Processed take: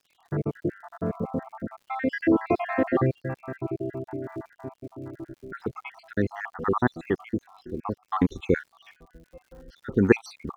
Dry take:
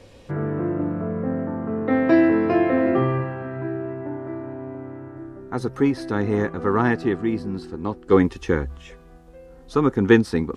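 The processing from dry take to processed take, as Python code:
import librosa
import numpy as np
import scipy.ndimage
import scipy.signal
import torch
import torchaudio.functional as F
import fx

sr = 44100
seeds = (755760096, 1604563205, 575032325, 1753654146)

y = fx.spec_dropout(x, sr, seeds[0], share_pct=64)
y = fx.env_lowpass(y, sr, base_hz=2000.0, full_db=-19.0)
y = fx.dmg_crackle(y, sr, seeds[1], per_s=120.0, level_db=-49.0)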